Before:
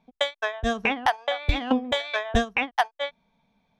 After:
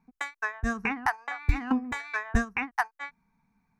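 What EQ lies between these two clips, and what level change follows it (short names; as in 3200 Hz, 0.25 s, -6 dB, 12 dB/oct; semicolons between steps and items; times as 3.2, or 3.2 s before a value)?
fixed phaser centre 1400 Hz, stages 4; 0.0 dB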